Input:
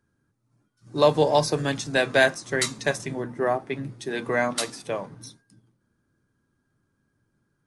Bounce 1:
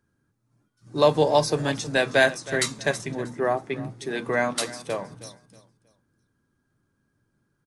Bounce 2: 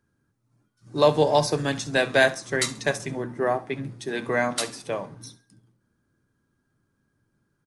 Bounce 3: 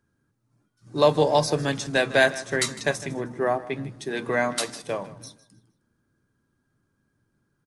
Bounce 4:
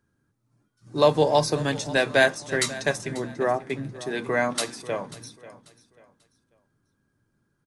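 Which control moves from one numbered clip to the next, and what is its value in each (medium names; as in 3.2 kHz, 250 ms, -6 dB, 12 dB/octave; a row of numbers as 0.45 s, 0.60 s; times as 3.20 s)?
feedback delay, time: 318 ms, 67 ms, 155 ms, 540 ms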